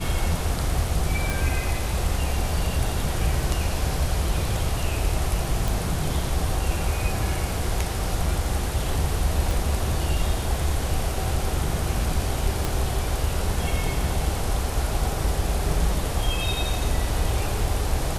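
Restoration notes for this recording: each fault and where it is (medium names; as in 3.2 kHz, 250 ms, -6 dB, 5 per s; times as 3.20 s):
1.30 s: pop
5.68 s: pop
9.51 s: pop
12.65 s: pop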